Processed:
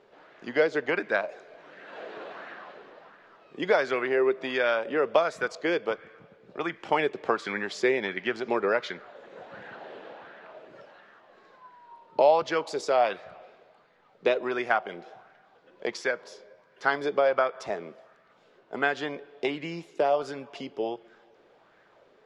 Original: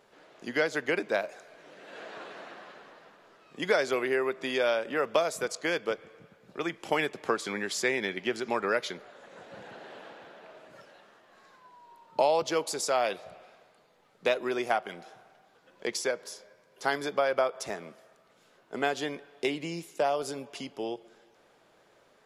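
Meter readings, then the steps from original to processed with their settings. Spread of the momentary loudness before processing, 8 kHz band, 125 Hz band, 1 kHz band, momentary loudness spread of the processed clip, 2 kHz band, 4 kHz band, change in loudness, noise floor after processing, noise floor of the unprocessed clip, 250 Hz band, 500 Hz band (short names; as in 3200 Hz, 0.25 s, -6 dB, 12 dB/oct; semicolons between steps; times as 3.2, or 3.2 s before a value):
19 LU, -10.0 dB, 0.0 dB, +3.0 dB, 19 LU, +2.5 dB, -2.0 dB, +2.5 dB, -61 dBFS, -64 dBFS, +2.0 dB, +3.0 dB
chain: LPF 4200 Hz 12 dB/oct; LFO bell 1.4 Hz 370–1800 Hz +8 dB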